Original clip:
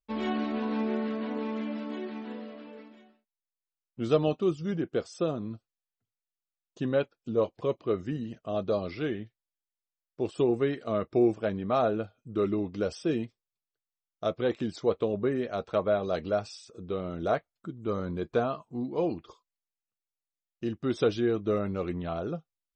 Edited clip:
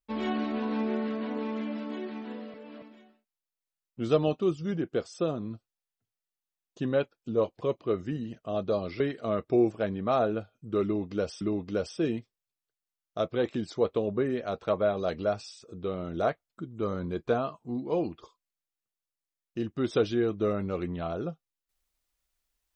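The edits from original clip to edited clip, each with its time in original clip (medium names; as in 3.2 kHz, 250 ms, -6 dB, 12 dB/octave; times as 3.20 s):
2.54–2.82 s: reverse
9.00–10.63 s: delete
12.47–13.04 s: loop, 2 plays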